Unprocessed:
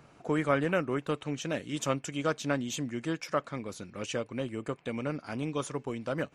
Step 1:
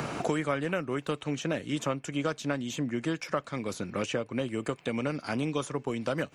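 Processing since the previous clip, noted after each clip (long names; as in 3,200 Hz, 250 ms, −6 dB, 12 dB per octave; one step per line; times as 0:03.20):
multiband upward and downward compressor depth 100%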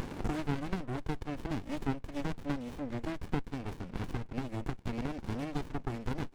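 Bessel high-pass filter 250 Hz, order 4
windowed peak hold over 65 samples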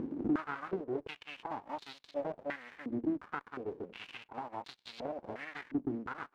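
in parallel at −9.5 dB: bit-depth reduction 6 bits, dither none
on the sum: band-pass on a step sequencer 2.8 Hz 290–4,000 Hz
level +7 dB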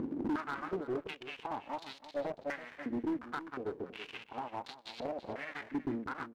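hard clipping −31.5 dBFS, distortion −11 dB
single-tap delay 328 ms −14.5 dB
level +1.5 dB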